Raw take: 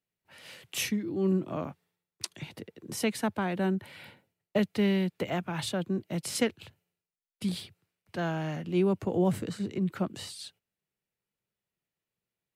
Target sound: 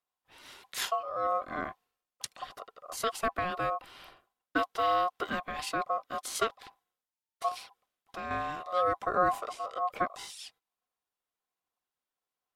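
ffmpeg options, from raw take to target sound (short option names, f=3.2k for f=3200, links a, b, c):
-filter_complex "[0:a]asettb=1/sr,asplit=3[a][b][c];[a]atrim=end=7.484[d];[b]atrim=start=7.48:end=8.31,asetpts=PTS-STARTPTS,afade=t=in:d=0.004:c=qsin,afade=t=out:st=0.826:d=0.004:c=qsin,acompressor=threshold=-34dB:ratio=6[e];[c]atrim=start=8.306[f];[d][e]acrossfade=d=0.004:c1=hsin:c2=qsin[g];[g][f]acrossfade=d=0.004:c1=qsin:c2=hsin,aphaser=in_gain=1:out_gain=1:delay=3.3:decay=0.28:speed=1.2:type=sinusoidal,aeval=exprs='val(0)*sin(2*PI*900*n/s)':c=same"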